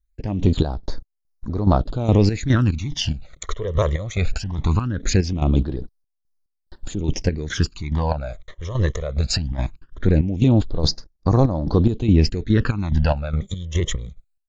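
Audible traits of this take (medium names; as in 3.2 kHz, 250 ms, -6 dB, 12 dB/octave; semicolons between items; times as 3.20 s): chopped level 2.4 Hz, depth 65%, duty 50%; phasing stages 12, 0.2 Hz, lowest notch 250–2900 Hz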